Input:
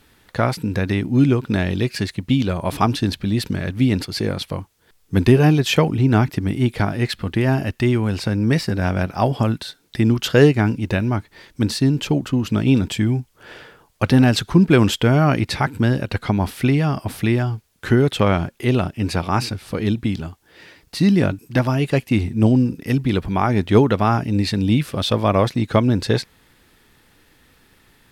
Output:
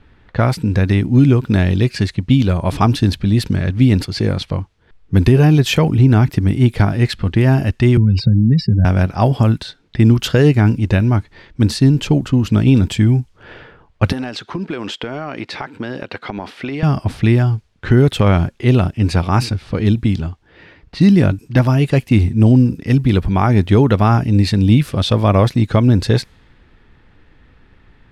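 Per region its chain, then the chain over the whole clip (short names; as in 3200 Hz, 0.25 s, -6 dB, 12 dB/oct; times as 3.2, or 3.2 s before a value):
7.97–8.85 spectral contrast raised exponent 2.3 + three-band squash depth 100%
14.12–16.83 HPF 350 Hz + compressor 8:1, threshold -23 dBFS
whole clip: low-pass opened by the level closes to 2500 Hz, open at -15.5 dBFS; low shelf 120 Hz +11.5 dB; maximiser +3 dB; gain -1 dB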